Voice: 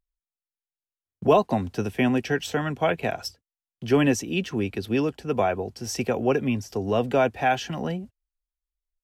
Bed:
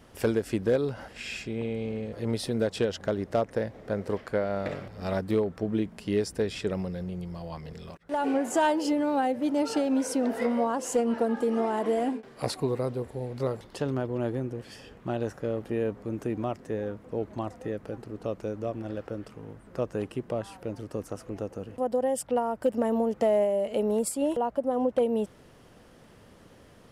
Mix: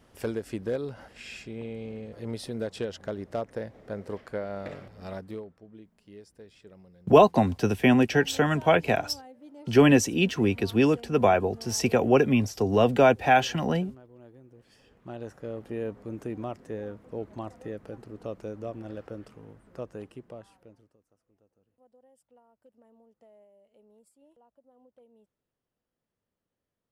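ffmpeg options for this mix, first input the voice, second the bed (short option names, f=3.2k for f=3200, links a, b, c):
-filter_complex "[0:a]adelay=5850,volume=2.5dB[a];[1:a]volume=12dB,afade=t=out:st=4.89:d=0.71:silence=0.158489,afade=t=in:st=14.44:d=1.41:silence=0.133352,afade=t=out:st=19.2:d=1.77:silence=0.0316228[b];[a][b]amix=inputs=2:normalize=0"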